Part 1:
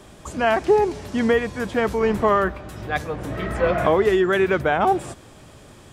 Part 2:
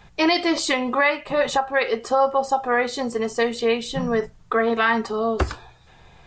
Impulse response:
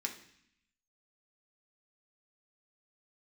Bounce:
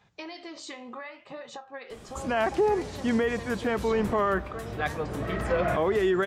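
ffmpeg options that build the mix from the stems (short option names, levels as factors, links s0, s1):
-filter_complex "[0:a]adelay=1900,volume=0.668[s0];[1:a]highpass=96,acompressor=threshold=0.0562:ratio=10,flanger=delay=8.8:depth=9.6:regen=76:speed=0.66:shape=sinusoidal,volume=0.398[s1];[s0][s1]amix=inputs=2:normalize=0,alimiter=limit=0.15:level=0:latency=1:release=42"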